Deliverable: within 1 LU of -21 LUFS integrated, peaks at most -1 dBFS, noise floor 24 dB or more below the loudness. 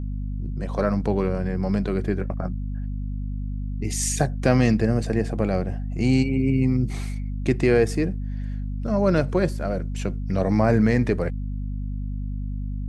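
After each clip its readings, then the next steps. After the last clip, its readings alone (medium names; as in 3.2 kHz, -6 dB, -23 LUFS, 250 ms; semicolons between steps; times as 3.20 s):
hum 50 Hz; highest harmonic 250 Hz; hum level -26 dBFS; loudness -24.5 LUFS; peak level -5.5 dBFS; loudness target -21.0 LUFS
-> hum notches 50/100/150/200/250 Hz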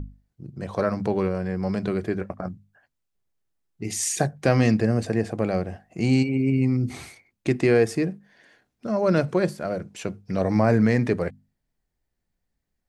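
hum not found; loudness -24.0 LUFS; peak level -7.0 dBFS; loudness target -21.0 LUFS
-> trim +3 dB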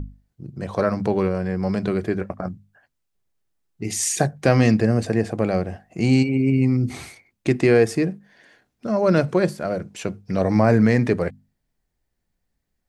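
loudness -21.0 LUFS; peak level -4.0 dBFS; noise floor -76 dBFS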